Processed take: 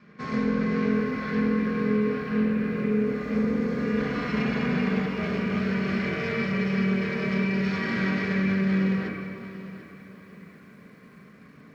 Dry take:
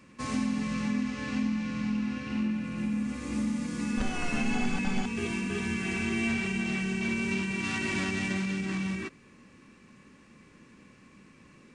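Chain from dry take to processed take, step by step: minimum comb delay 0.92 ms; speaker cabinet 100–4600 Hz, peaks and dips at 160 Hz +6 dB, 450 Hz +9 dB, 860 Hz -9 dB, 1600 Hz +10 dB, 3100 Hz -8 dB; reverb RT60 2.5 s, pre-delay 5 ms, DRR -1.5 dB; lo-fi delay 0.742 s, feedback 35%, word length 9-bit, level -14.5 dB

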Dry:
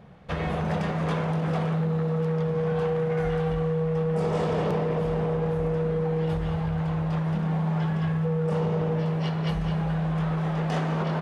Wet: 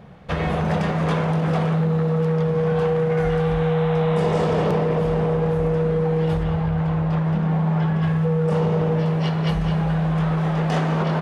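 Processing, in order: 3.45–4.33 spectral repair 620–4100 Hz both; 6.43–8.03 high shelf 4400 Hz -9 dB; gain +5.5 dB

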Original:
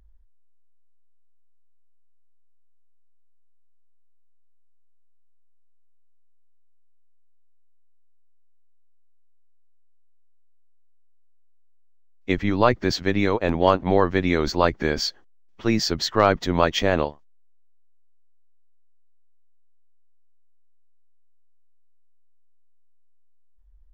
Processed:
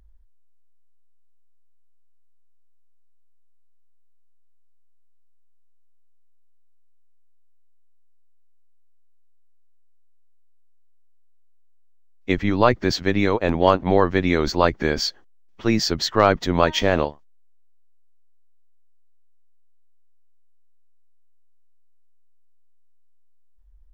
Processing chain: 16.56–17.06 de-hum 310.9 Hz, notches 33; gain +1.5 dB

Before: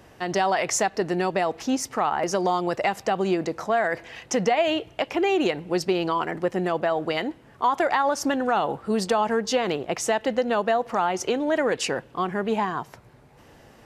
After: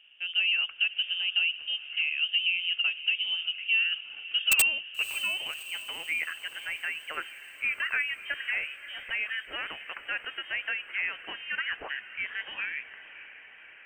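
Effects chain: band-pass sweep 570 Hz -> 1600 Hz, 4.19–6.4; inverted band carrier 3400 Hz; wrapped overs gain 16 dB; diffused feedback echo 0.582 s, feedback 64%, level -14.5 dB

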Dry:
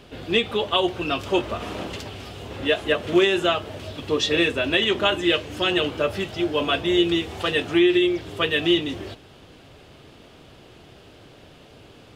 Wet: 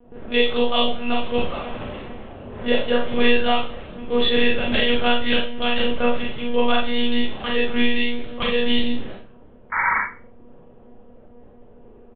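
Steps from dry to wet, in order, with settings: low-pass opened by the level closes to 670 Hz, open at -20.5 dBFS; comb 7 ms, depth 65%; painted sound noise, 9.72–10, 830–2300 Hz -19 dBFS; monotone LPC vocoder at 8 kHz 240 Hz; Schroeder reverb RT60 0.34 s, combs from 29 ms, DRR -1.5 dB; gain -4 dB

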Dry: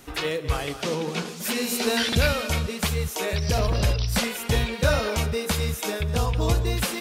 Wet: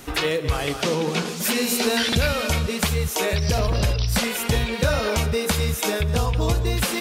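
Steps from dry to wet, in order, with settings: compressor 2.5:1, threshold -27 dBFS, peak gain reduction 8 dB; gain +7 dB

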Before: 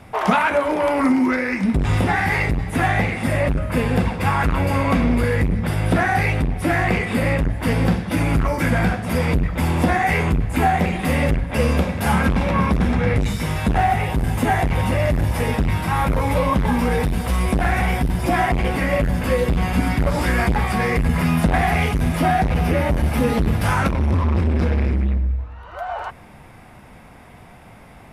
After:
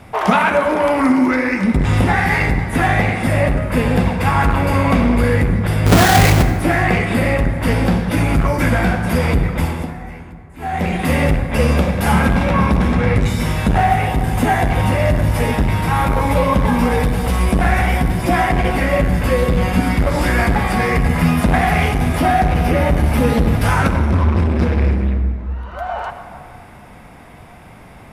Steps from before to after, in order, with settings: 5.86–6.43 half-waves squared off; 9.53–10.95 dip -23 dB, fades 0.38 s; reverb RT60 2.2 s, pre-delay 53 ms, DRR 8 dB; gain +3 dB

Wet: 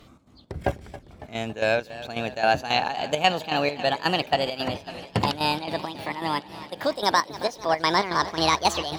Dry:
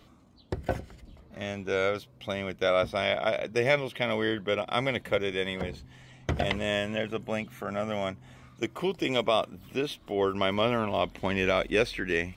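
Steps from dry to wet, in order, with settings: speed glide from 101% -> 174%; chopper 3.7 Hz, depth 65%, duty 65%; warbling echo 0.277 s, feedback 77%, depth 105 cents, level -16 dB; gain +5 dB

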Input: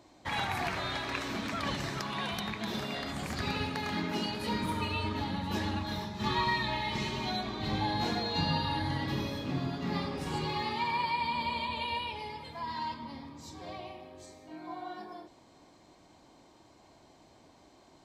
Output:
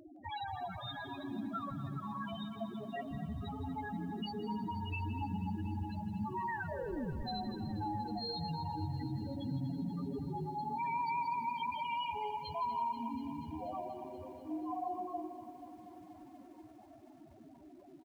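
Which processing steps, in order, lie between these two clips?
limiter -28.5 dBFS, peak gain reduction 9.5 dB; compressor 2.5:1, threshold -45 dBFS, peak gain reduction 8 dB; 6.5 tape stop 0.73 s; loudest bins only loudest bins 4; 2.43–3.11 speaker cabinet 170–3100 Hz, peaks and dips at 180 Hz -5 dB, 320 Hz -9 dB, 730 Hz +8 dB, 1200 Hz -6 dB, 1800 Hz +9 dB, 2700 Hz -7 dB; feedback echo 0.163 s, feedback 49%, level -13.5 dB; lo-fi delay 0.241 s, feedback 80%, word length 12-bit, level -14 dB; gain +9.5 dB

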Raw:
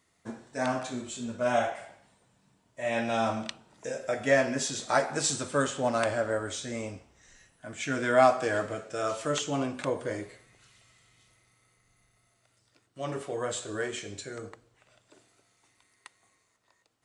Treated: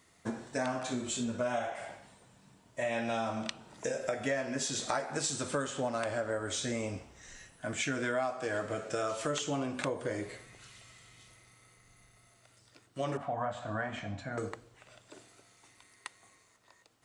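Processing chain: 13.17–14.38 EQ curve 270 Hz 0 dB, 400 Hz -26 dB, 670 Hz +8 dB, 10000 Hz -27 dB; compressor 6:1, threshold -37 dBFS, peak gain reduction 20 dB; gain +6 dB

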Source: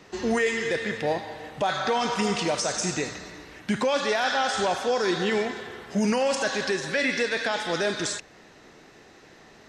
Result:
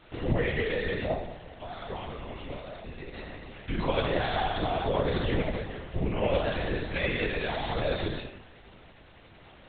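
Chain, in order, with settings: HPF 110 Hz 24 dB/oct; bell 1500 Hz -6.5 dB 0.56 oct; notches 50/100/150/200/250/300/350/400/450/500 Hz; limiter -21 dBFS, peak gain reduction 7.5 dB; 1.13–3.14 resonator 230 Hz, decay 0.93 s, mix 70%; bit-crush 8-bit; shoebox room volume 180 m³, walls mixed, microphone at 1.3 m; LPC vocoder at 8 kHz whisper; gain -4 dB

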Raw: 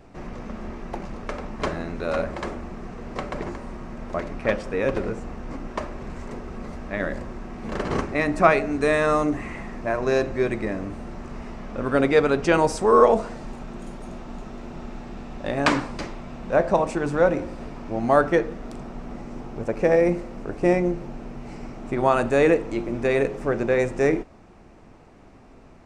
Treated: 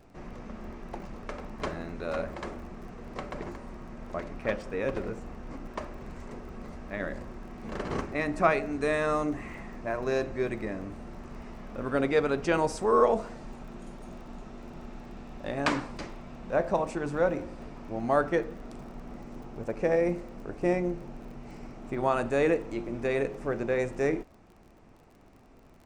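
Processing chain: crackle 26/s -39 dBFS; gain -7 dB

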